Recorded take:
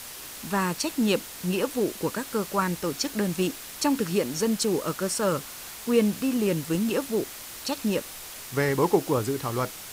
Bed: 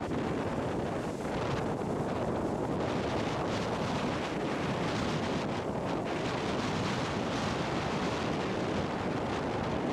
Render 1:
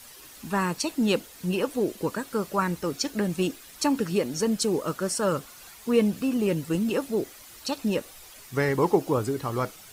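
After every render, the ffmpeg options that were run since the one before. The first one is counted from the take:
-af "afftdn=nr=10:nf=-41"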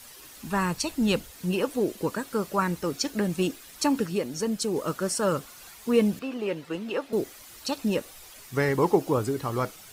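-filter_complex "[0:a]asplit=3[s0][s1][s2];[s0]afade=t=out:st=0.47:d=0.02[s3];[s1]asubboost=boost=11:cutoff=130,afade=t=in:st=0.47:d=0.02,afade=t=out:st=1.3:d=0.02[s4];[s2]afade=t=in:st=1.3:d=0.02[s5];[s3][s4][s5]amix=inputs=3:normalize=0,asettb=1/sr,asplit=3[s6][s7][s8];[s6]atrim=end=6.194[s9];[s7]atrim=start=6.19:end=7.13,asetpts=PTS-STARTPTS,afade=t=in:d=0.004:c=qsin,afade=t=out:st=0.936:d=0.004:c=qsin,acrossover=split=370 4400:gain=0.224 1 0.178[s10][s11][s12];[s10][s11][s12]amix=inputs=3:normalize=0[s13];[s8]atrim=start=7.126[s14];[s9][s13]acrossfade=d=0.004:c1=hsin:c2=qsin[s15];[s15][s14]acrossfade=d=0.004:c1=qsin:c2=hsin,asplit=3[s16][s17][s18];[s16]atrim=end=4.062[s19];[s17]atrim=start=4.058:end=4.762,asetpts=PTS-STARTPTS,volume=0.708[s20];[s18]atrim=start=4.758[s21];[s19][s20]acrossfade=d=0.004:c1=hsin:c2=hsin[s22];[s22][s21]acrossfade=d=0.004:c1=hsin:c2=hsin"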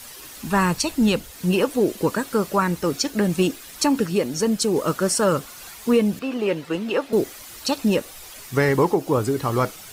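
-af "alimiter=limit=0.168:level=0:latency=1:release=372,acontrast=84"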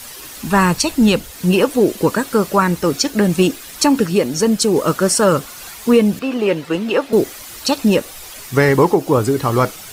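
-af "volume=2"

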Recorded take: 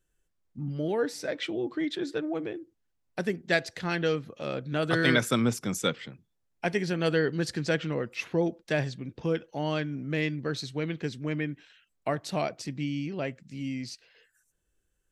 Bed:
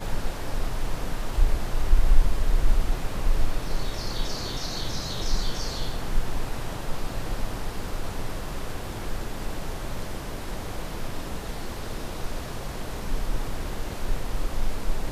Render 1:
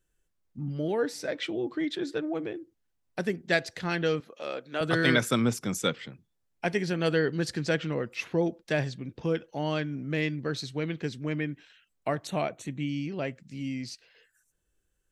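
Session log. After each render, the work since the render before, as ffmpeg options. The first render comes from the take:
-filter_complex "[0:a]asettb=1/sr,asplit=3[s0][s1][s2];[s0]atrim=end=4.204[s3];[s1]atrim=start=4.2:end=4.81,asetpts=PTS-STARTPTS,afade=t=in:d=0.004:c=qsin,afade=t=out:st=0.606:d=0.004:c=qsin,highpass=410[s4];[s2]atrim=start=4.806[s5];[s3][s4]acrossfade=d=0.004:c1=hsin:c2=qsin[s6];[s6][s5]acrossfade=d=0.004:c1=qsin:c2=hsin,asettb=1/sr,asplit=3[s7][s8][s9];[s7]atrim=end=12.274[s10];[s8]atrim=start=12.27:end=12.89,asetpts=PTS-STARTPTS,afade=t=in:d=0.004:c=qsin,afade=t=out:st=0.616:d=0.004:c=qsin,asuperstop=centerf=5000:order=4:qfactor=2.5[s11];[s9]atrim=start=12.886[s12];[s10][s11]acrossfade=d=0.004:c1=hsin:c2=qsin[s13];[s13][s12]acrossfade=d=0.004:c1=qsin:c2=hsin"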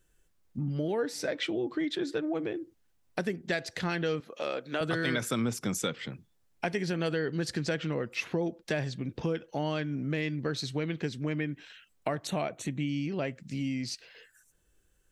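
-filter_complex "[0:a]asplit=2[s0][s1];[s1]alimiter=limit=0.112:level=0:latency=1:release=38,volume=1.26[s2];[s0][s2]amix=inputs=2:normalize=0,acompressor=threshold=0.0251:ratio=2.5"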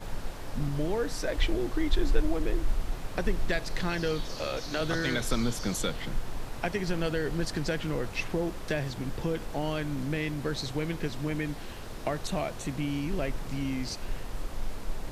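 -filter_complex "[1:a]volume=0.422[s0];[0:a][s0]amix=inputs=2:normalize=0"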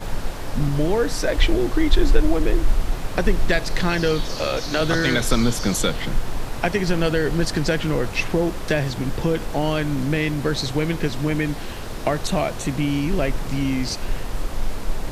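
-af "volume=2.99,alimiter=limit=0.708:level=0:latency=1"

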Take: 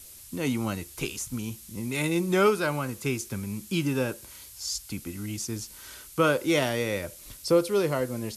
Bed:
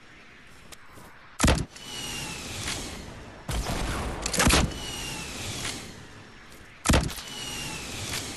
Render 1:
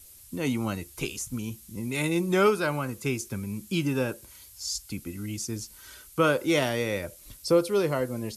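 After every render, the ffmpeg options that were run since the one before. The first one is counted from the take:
-af "afftdn=nr=6:nf=-48"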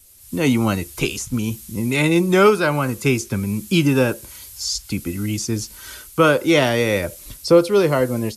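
-filter_complex "[0:a]acrossover=split=480|5800[s0][s1][s2];[s2]alimiter=level_in=3.35:limit=0.0631:level=0:latency=1:release=269,volume=0.299[s3];[s0][s1][s3]amix=inputs=3:normalize=0,dynaudnorm=f=180:g=3:m=3.55"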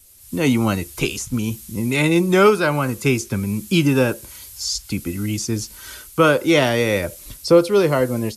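-af anull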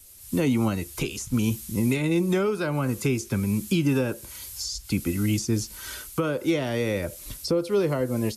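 -filter_complex "[0:a]alimiter=limit=0.224:level=0:latency=1:release=468,acrossover=split=490[s0][s1];[s1]acompressor=threshold=0.0316:ratio=6[s2];[s0][s2]amix=inputs=2:normalize=0"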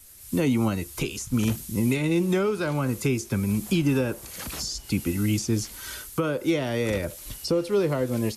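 -filter_complex "[1:a]volume=0.141[s0];[0:a][s0]amix=inputs=2:normalize=0"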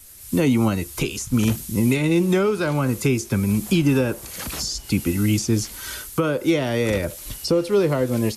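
-af "volume=1.68"

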